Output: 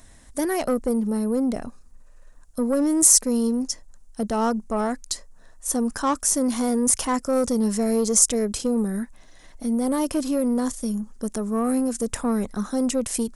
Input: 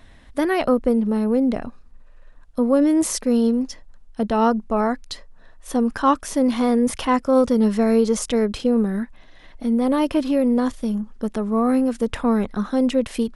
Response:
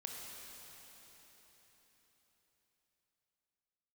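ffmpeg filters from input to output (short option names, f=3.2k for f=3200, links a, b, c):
-af "asoftclip=type=tanh:threshold=-12.5dB,highshelf=f=4.9k:t=q:w=1.5:g=13.5,volume=-2.5dB"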